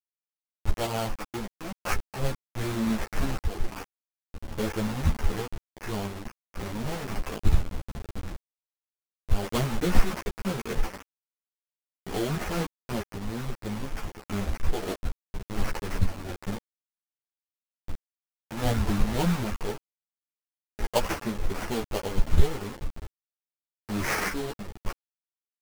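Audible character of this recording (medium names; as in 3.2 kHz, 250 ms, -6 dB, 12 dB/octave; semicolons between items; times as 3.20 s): a quantiser's noise floor 6-bit, dither none; random-step tremolo; aliases and images of a low sample rate 3.8 kHz, jitter 20%; a shimmering, thickened sound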